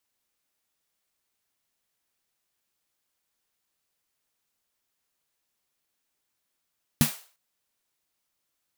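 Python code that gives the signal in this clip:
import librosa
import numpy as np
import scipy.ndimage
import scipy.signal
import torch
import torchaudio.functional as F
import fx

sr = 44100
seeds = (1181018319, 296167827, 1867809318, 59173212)

y = fx.drum_snare(sr, seeds[0], length_s=0.35, hz=150.0, second_hz=230.0, noise_db=-7.0, noise_from_hz=510.0, decay_s=0.13, noise_decay_s=0.4)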